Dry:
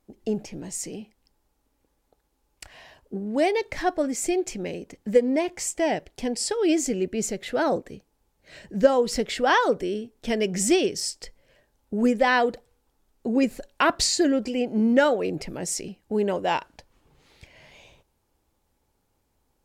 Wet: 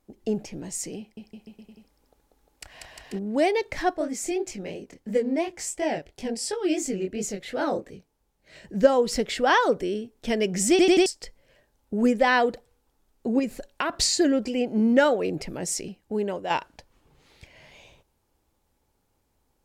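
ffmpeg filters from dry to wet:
-filter_complex "[0:a]asettb=1/sr,asplit=3[s0][s1][s2];[s0]atrim=end=0.984[s3];[s1]atrim=start=0.98:end=3.19,asetpts=PTS-STARTPTS,afade=t=in:d=0.004:c=qsin,afade=t=out:st=2.206:d=0.004:c=qsin,aecho=1:1:190|351.5|488.8|605.5|704.6|788.9:0.794|0.631|0.501|0.398|0.316|0.251,atrim=end_sample=97461[s4];[s2]atrim=start=3.186[s5];[s3][s4]acrossfade=d=0.004:c1=hsin:c2=qsin[s6];[s6][s5]acrossfade=d=0.004:c1=qsin:c2=hsin,asplit=3[s7][s8][s9];[s7]afade=t=out:st=3.93:d=0.02[s10];[s8]flanger=delay=19:depth=7.6:speed=2.9,afade=t=in:st=3.93:d=0.02,afade=t=out:st=8.63:d=0.02[s11];[s9]afade=t=in:st=8.63:d=0.02[s12];[s10][s11][s12]amix=inputs=3:normalize=0,asettb=1/sr,asplit=3[s13][s14][s15];[s13]atrim=end=13.394[s16];[s14]atrim=start=13.39:end=13.96,asetpts=PTS-STARTPTS,afade=t=in:d=0.004:c=qsin,afade=t=out:st=0.566:d=0.004:c=qsin,acompressor=threshold=0.0794:ratio=5:attack=3.2:release=140:knee=1:detection=peak[s17];[s15]atrim=start=13.956[s18];[s16][s17]acrossfade=d=0.004:c1=hsin:c2=qsin[s19];[s19][s18]acrossfade=d=0.004:c1=qsin:c2=hsin,asplit=6[s20][s21][s22][s23][s24][s25];[s20]atrim=end=10.792[s26];[s21]atrim=start=10.698:end=10.792[s27];[s22]atrim=start=10.698:end=10.792[s28];[s23]atrim=start=10.698:end=10.792[s29];[s24]atrim=start=11.058:end=16.5,asetpts=PTS-STARTPTS,afade=t=out:st=4.792:d=0.65:silence=0.446684[s30];[s25]atrim=start=16.5,asetpts=PTS-STARTPTS,afade=t=in:d=0.004:c=hsin:silence=0.446684[s31];[s26][s27]acrossfade=d=0.004:c1=hsin:c2=hsin[s32];[s32][s28]acrossfade=d=0.004:c1=hsin:c2=hsin[s33];[s33][s29]acrossfade=d=0.004:c1=hsin:c2=hsin[s34];[s30][s31]concat=n=2:v=0:a=1[s35];[s34][s35]acrossfade=d=0.004:c1=hsin:c2=hsin"

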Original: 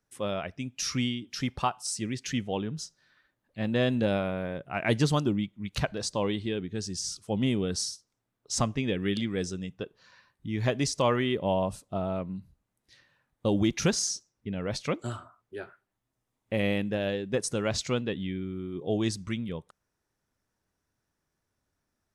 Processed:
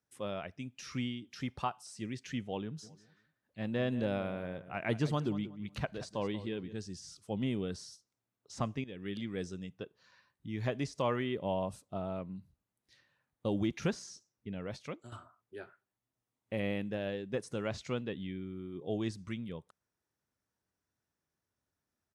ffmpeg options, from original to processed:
-filter_complex "[0:a]asplit=3[s0][s1][s2];[s0]afade=t=out:st=2.82:d=0.02[s3];[s1]asplit=2[s4][s5];[s5]adelay=184,lowpass=f=2200:p=1,volume=0.2,asplit=2[s6][s7];[s7]adelay=184,lowpass=f=2200:p=1,volume=0.27,asplit=2[s8][s9];[s9]adelay=184,lowpass=f=2200:p=1,volume=0.27[s10];[s4][s6][s8][s10]amix=inputs=4:normalize=0,afade=t=in:st=2.82:d=0.02,afade=t=out:st=6.72:d=0.02[s11];[s2]afade=t=in:st=6.72:d=0.02[s12];[s3][s11][s12]amix=inputs=3:normalize=0,asplit=3[s13][s14][s15];[s13]atrim=end=8.84,asetpts=PTS-STARTPTS,afade=t=out:st=8.836:d=0.004:c=hsin:silence=0.16788[s16];[s14]atrim=start=8.84:end=15.12,asetpts=PTS-STARTPTS,afade=t=in:d=0.66:c=qsin:silence=0.16788,afade=t=out:st=5.71:d=0.57:silence=0.266073[s17];[s15]atrim=start=15.12,asetpts=PTS-STARTPTS,afade=t=in:d=0.004:c=hsin:silence=0.266073[s18];[s16][s17][s18]concat=n=3:v=0:a=1,acrossover=split=2900[s19][s20];[s20]acompressor=threshold=0.00794:ratio=4:attack=1:release=60[s21];[s19][s21]amix=inputs=2:normalize=0,highpass=61,volume=0.447"

